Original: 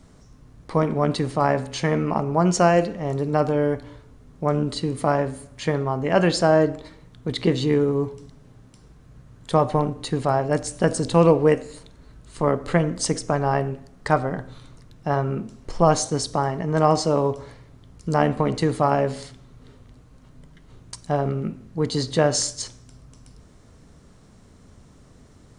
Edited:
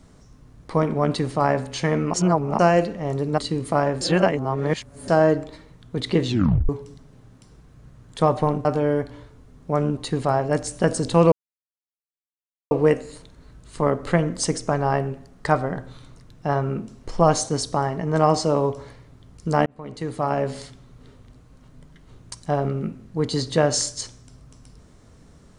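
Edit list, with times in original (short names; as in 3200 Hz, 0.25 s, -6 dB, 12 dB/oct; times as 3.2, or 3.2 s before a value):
2.14–2.59 reverse
3.38–4.7 move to 9.97
5.33–6.4 reverse
7.59 tape stop 0.42 s
11.32 insert silence 1.39 s
18.27–19.22 fade in linear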